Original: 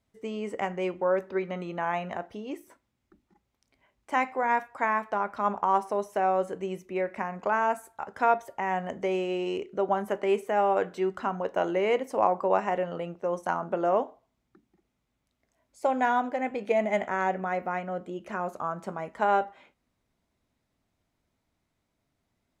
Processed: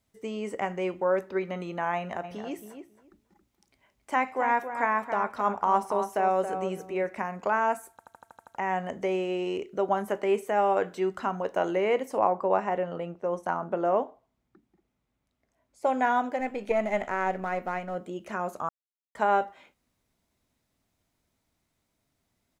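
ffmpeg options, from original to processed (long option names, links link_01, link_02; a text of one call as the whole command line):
ffmpeg -i in.wav -filter_complex "[0:a]asplit=3[link_01][link_02][link_03];[link_01]afade=type=out:start_time=2.23:duration=0.02[link_04];[link_02]asplit=2[link_05][link_06];[link_06]adelay=274,lowpass=frequency=2000:poles=1,volume=-8dB,asplit=2[link_07][link_08];[link_08]adelay=274,lowpass=frequency=2000:poles=1,volume=0.16,asplit=2[link_09][link_10];[link_10]adelay=274,lowpass=frequency=2000:poles=1,volume=0.16[link_11];[link_05][link_07][link_09][link_11]amix=inputs=4:normalize=0,afade=type=in:start_time=2.23:duration=0.02,afade=type=out:start_time=7.16:duration=0.02[link_12];[link_03]afade=type=in:start_time=7.16:duration=0.02[link_13];[link_04][link_12][link_13]amix=inputs=3:normalize=0,asettb=1/sr,asplit=3[link_14][link_15][link_16];[link_14]atrim=end=12.184[link_17];[link_15]atrim=start=12.18:end=15.87,asetpts=PTS-STARTPTS,afade=type=in:duration=0.004:curve=qsin,afade=type=out:start_time=3.686:duration=0.004:curve=qsin,highshelf=frequency=3500:gain=-12[link_18];[link_16]atrim=start=15.866[link_19];[link_17][link_18]acrossfade=duration=0.004:curve1=hsin:curve2=qsin[link_20];[link_20][link_19]acrossfade=duration=0.004:curve1=qsin:curve2=hsin,asettb=1/sr,asplit=3[link_21][link_22][link_23];[link_21]atrim=end=16.404[link_24];[link_22]atrim=start=16.4:end=17.95,asetpts=PTS-STARTPTS,afade=type=in:duration=0.004:curve=qsin,afade=type=out:start_time=1.546:duration=0.004:curve=qsin,aeval=exprs='if(lt(val(0),0),0.708*val(0),val(0))':channel_layout=same[link_25];[link_23]atrim=start=17.946[link_26];[link_24][link_25]acrossfade=duration=0.004:curve1=hsin:curve2=qsin[link_27];[link_27][link_26]acrossfade=duration=0.004:curve1=qsin:curve2=hsin,asplit=11[link_28][link_29][link_30][link_31][link_32][link_33][link_34][link_35][link_36][link_37][link_38];[link_28]atrim=end=7.992[link_39];[link_29]atrim=start=7.908:end=7.992[link_40];[link_30]atrim=start=7.908:end=7.992[link_41];[link_31]atrim=start=7.908:end=7.992[link_42];[link_32]atrim=start=7.908:end=7.992[link_43];[link_33]atrim=start=7.908:end=7.992[link_44];[link_34]atrim=start=7.908:end=7.992[link_45];[link_35]atrim=start=7.908:end=7.992[link_46];[link_36]atrim=start=8.548:end=18.69,asetpts=PTS-STARTPTS,afade=type=out:start_time=10.138:duration=0.004:curve=hsin[link_47];[link_37]atrim=start=18.69:end=19.15,asetpts=PTS-STARTPTS,volume=0[link_48];[link_38]atrim=start=19.15,asetpts=PTS-STARTPTS,afade=type=in:duration=0.004:curve=hsin[link_49];[link_39][link_40]acrossfade=duration=0.004:curve1=hsin:curve2=hsin[link_50];[link_50][link_41]acrossfade=duration=0.004:curve1=hsin:curve2=hsin[link_51];[link_51][link_42]acrossfade=duration=0.004:curve1=hsin:curve2=hsin[link_52];[link_52][link_43]acrossfade=duration=0.004:curve1=hsin:curve2=hsin[link_53];[link_53][link_44]acrossfade=duration=0.004:curve1=hsin:curve2=hsin[link_54];[link_54][link_45]acrossfade=duration=0.004:curve1=hsin:curve2=hsin[link_55];[link_55][link_46]acrossfade=duration=0.004:curve1=hsin:curve2=hsin[link_56];[link_47][link_48][link_49]concat=n=3:v=0:a=1[link_57];[link_56][link_57]acrossfade=duration=0.004:curve1=hsin:curve2=hsin,acrossover=split=2700[link_58][link_59];[link_59]acompressor=threshold=-50dB:ratio=4:attack=1:release=60[link_60];[link_58][link_60]amix=inputs=2:normalize=0,highshelf=frequency=4700:gain=8" out.wav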